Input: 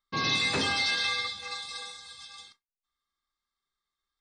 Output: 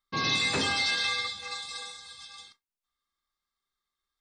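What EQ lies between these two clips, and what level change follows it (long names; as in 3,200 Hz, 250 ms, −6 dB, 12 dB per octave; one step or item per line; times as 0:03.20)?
dynamic equaliser 7,400 Hz, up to +6 dB, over −57 dBFS, Q 5.1
0.0 dB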